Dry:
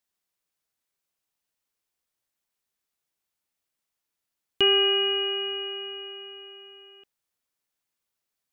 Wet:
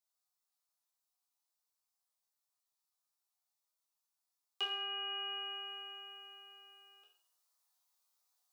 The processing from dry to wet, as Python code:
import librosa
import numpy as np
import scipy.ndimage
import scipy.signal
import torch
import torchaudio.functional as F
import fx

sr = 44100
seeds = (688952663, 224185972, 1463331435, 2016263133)

y = scipy.signal.sosfilt(scipy.signal.butter(4, 690.0, 'highpass', fs=sr, output='sos'), x)
y = fx.band_shelf(y, sr, hz=2200.0, db=-9.5, octaves=1.3)
y = fx.resonator_bank(y, sr, root=40, chord='major', decay_s=0.56)
y = fx.rider(y, sr, range_db=4, speed_s=0.5)
y = y * librosa.db_to_amplitude(16.0)